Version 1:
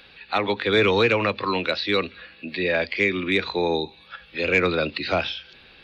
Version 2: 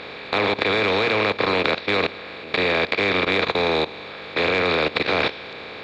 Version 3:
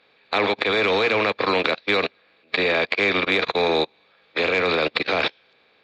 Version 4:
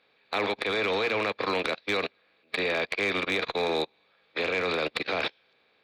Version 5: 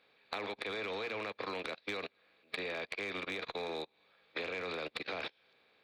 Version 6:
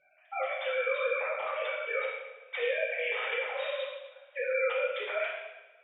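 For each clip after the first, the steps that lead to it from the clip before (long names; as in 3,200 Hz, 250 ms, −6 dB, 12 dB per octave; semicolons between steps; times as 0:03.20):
compressor on every frequency bin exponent 0.2; hum removal 116 Hz, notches 3; output level in coarse steps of 16 dB; level −4 dB
spectral dynamics exaggerated over time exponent 2; low-shelf EQ 140 Hz −10 dB; expander for the loud parts 1.5 to 1, over −39 dBFS; level +5.5 dB
asymmetric clip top −12.5 dBFS, bottom −8.5 dBFS; level −7 dB
downward compressor 6 to 1, threshold −34 dBFS, peak gain reduction 10.5 dB; level −2.5 dB
three sine waves on the formant tracks; coupled-rooms reverb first 0.96 s, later 2.8 s, from −26 dB, DRR −7.5 dB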